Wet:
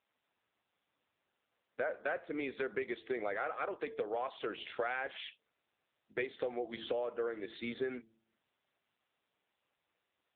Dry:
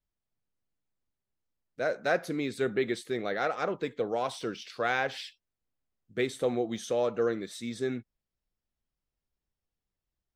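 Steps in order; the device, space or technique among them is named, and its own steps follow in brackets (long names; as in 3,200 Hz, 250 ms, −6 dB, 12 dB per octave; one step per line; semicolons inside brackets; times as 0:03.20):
0:04.59–0:06.54: notch filter 1,100 Hz, Q 11
hum removal 112.1 Hz, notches 4
dynamic equaliser 7,400 Hz, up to +3 dB, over −58 dBFS, Q 3.3
voicemail (band-pass filter 440–3,300 Hz; downward compressor 10 to 1, threshold −40 dBFS, peak gain reduction 17.5 dB; level +7.5 dB; AMR narrowband 6.7 kbit/s 8,000 Hz)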